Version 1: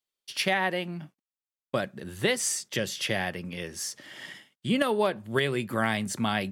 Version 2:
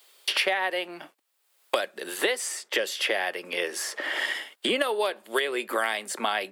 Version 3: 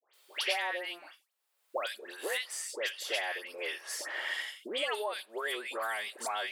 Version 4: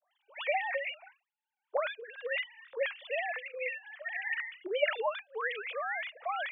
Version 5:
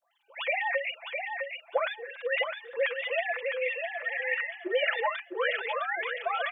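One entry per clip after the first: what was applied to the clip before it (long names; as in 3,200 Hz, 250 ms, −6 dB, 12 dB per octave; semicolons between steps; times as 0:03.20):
high-pass filter 390 Hz 24 dB per octave; parametric band 6,100 Hz −5 dB 0.39 octaves; multiband upward and downward compressor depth 100%; level +2 dB
in parallel at −10 dB: soft clipping −18.5 dBFS, distortion −16 dB; on the sum: high-pass filter 450 Hz 12 dB per octave; all-pass dispersion highs, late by 138 ms, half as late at 1,600 Hz; level −9 dB
three sine waves on the formant tracks; dynamic equaliser 2,300 Hz, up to +6 dB, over −52 dBFS, Q 2.7
comb filter 5.9 ms, depth 78%; repeating echo 658 ms, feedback 22%, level −5.5 dB; level +2 dB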